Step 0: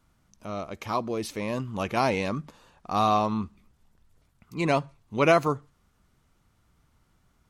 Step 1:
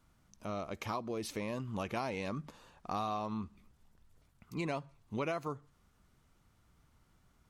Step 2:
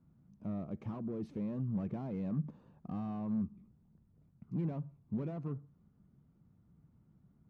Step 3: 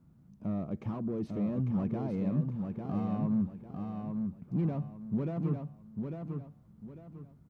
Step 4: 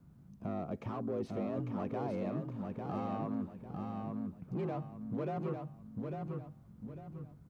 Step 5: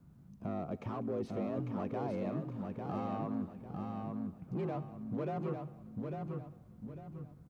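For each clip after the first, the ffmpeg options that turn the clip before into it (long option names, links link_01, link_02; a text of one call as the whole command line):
ffmpeg -i in.wav -af "acompressor=threshold=-32dB:ratio=5,volume=-2.5dB" out.wav
ffmpeg -i in.wav -af "asoftclip=type=hard:threshold=-37dB,bandpass=frequency=170:width_type=q:width=1.8:csg=0,volume=10dB" out.wav
ffmpeg -i in.wav -af "aecho=1:1:849|1698|2547|3396:0.562|0.18|0.0576|0.0184,volume=5dB" out.wav
ffmpeg -i in.wav -filter_complex "[0:a]acrossover=split=300[link_01][link_02];[link_01]acompressor=threshold=-41dB:ratio=6[link_03];[link_02]afreqshift=47[link_04];[link_03][link_04]amix=inputs=2:normalize=0,volume=2.5dB" out.wav
ffmpeg -i in.wav -af "aecho=1:1:195|390|585:0.0891|0.0419|0.0197" out.wav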